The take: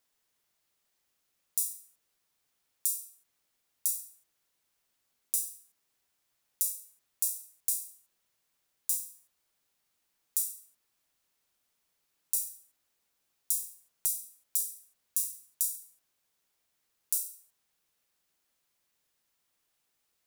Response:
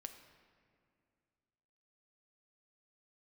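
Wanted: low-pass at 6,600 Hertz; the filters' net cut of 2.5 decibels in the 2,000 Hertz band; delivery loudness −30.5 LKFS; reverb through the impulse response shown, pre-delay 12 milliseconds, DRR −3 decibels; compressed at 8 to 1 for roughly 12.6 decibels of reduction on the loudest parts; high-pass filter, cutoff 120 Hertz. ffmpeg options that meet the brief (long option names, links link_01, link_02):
-filter_complex "[0:a]highpass=120,lowpass=6600,equalizer=frequency=2000:width_type=o:gain=-3.5,acompressor=threshold=-48dB:ratio=8,asplit=2[link_01][link_02];[1:a]atrim=start_sample=2205,adelay=12[link_03];[link_02][link_03]afir=irnorm=-1:irlink=0,volume=8dB[link_04];[link_01][link_04]amix=inputs=2:normalize=0,volume=19dB"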